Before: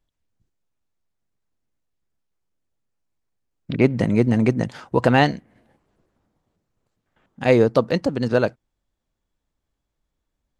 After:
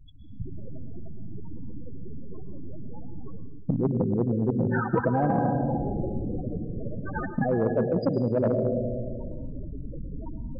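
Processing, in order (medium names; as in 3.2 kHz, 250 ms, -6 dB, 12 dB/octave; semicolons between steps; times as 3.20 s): recorder AGC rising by 56 dB/s; loudest bins only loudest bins 8; reverberation RT60 1.0 s, pre-delay 109 ms, DRR 10 dB; reverse; compression 10:1, threshold -27 dBFS, peak gain reduction 17.5 dB; reverse; spectrum-flattening compressor 2:1; trim +7 dB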